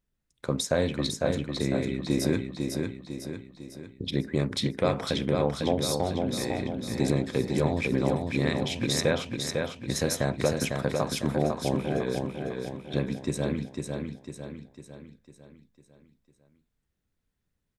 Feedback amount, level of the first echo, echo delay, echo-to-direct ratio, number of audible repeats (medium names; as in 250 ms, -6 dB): 49%, -4.5 dB, 501 ms, -3.5 dB, 5